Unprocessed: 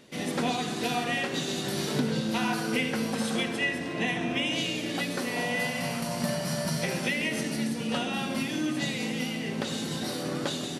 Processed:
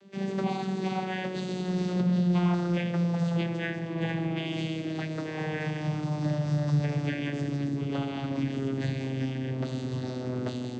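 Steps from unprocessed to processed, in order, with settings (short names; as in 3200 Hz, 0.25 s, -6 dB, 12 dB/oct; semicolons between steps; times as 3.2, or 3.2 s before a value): vocoder on a gliding note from G3, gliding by -8 st; in parallel at -11 dB: soft clip -28.5 dBFS, distortion -11 dB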